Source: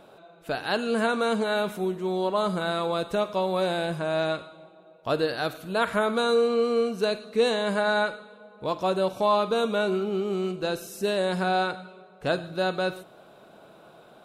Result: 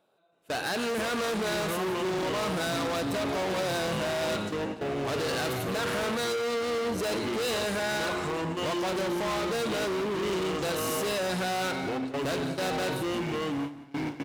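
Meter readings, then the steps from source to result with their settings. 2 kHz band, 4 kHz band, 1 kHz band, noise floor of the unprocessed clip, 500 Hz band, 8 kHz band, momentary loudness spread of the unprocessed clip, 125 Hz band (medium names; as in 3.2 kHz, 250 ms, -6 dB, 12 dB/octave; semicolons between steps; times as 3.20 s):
-1.5 dB, +0.5 dB, -3.5 dB, -53 dBFS, -4.5 dB, +8.0 dB, 8 LU, 0.0 dB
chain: bass shelf 150 Hz -6 dB; peak limiter -20.5 dBFS, peak gain reduction 8 dB; echo from a far wall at 36 m, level -29 dB; ever faster or slower copies 322 ms, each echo -5 st, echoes 3, each echo -6 dB; level rider gain up to 4.5 dB; overload inside the chain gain 30.5 dB; treble shelf 3.6 kHz +4 dB; gate with hold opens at -29 dBFS; high-pass 49 Hz; delay 176 ms -15 dB; trim +2 dB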